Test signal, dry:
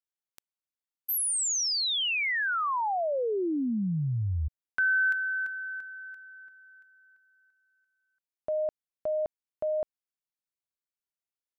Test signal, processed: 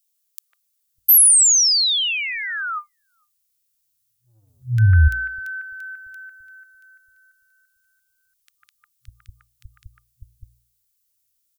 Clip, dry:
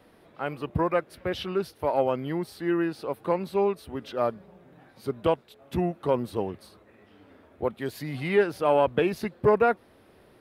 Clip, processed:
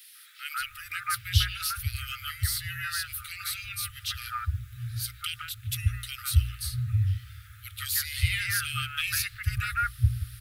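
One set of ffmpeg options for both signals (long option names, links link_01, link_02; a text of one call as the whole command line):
ffmpeg -i in.wav -filter_complex "[0:a]afftfilt=real='re*(1-between(b*sr/4096,120,1200))':imag='im*(1-between(b*sr/4096,120,1200))':win_size=4096:overlap=0.75,bandreject=frequency=59.51:width_type=h:width=4,bandreject=frequency=119.02:width_type=h:width=4,bandreject=frequency=178.53:width_type=h:width=4,crystalizer=i=5.5:c=0,asplit=2[link_01][link_02];[link_02]acompressor=threshold=-32dB:ratio=16:attack=1.3:release=25:knee=6:detection=rms,volume=1dB[link_03];[link_01][link_03]amix=inputs=2:normalize=0,acrossover=split=390|2000[link_04][link_05][link_06];[link_05]adelay=150[link_07];[link_04]adelay=600[link_08];[link_08][link_07][link_06]amix=inputs=3:normalize=0,asubboost=boost=7.5:cutoff=160,volume=-1.5dB" out.wav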